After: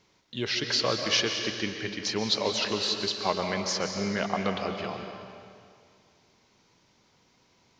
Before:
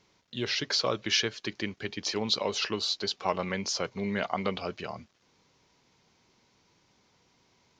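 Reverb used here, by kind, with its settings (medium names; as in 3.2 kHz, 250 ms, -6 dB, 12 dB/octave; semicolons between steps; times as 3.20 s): algorithmic reverb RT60 2.2 s, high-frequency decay 0.95×, pre-delay 100 ms, DRR 4.5 dB; trim +1 dB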